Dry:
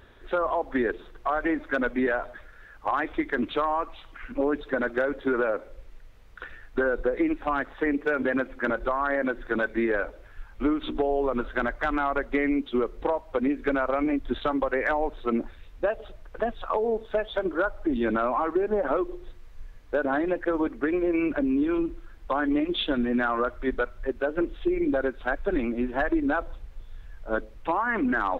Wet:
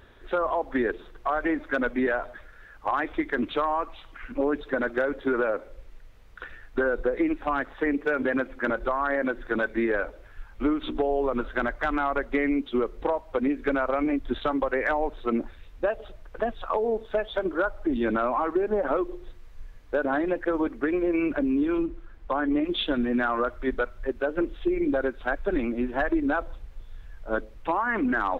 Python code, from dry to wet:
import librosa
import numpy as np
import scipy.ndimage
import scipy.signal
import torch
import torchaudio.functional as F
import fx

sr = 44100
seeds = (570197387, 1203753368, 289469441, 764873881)

y = fx.high_shelf(x, sr, hz=3500.0, db=-9.0, at=(21.85, 22.64))